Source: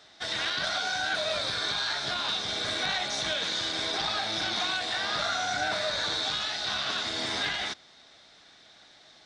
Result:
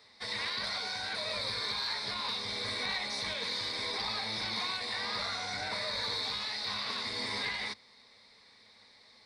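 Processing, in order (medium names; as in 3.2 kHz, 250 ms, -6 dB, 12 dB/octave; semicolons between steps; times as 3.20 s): rippled EQ curve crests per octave 0.92, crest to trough 12 dB; in parallel at -10.5 dB: saturation -23.5 dBFS, distortion -17 dB; on the sum: trim -8 dB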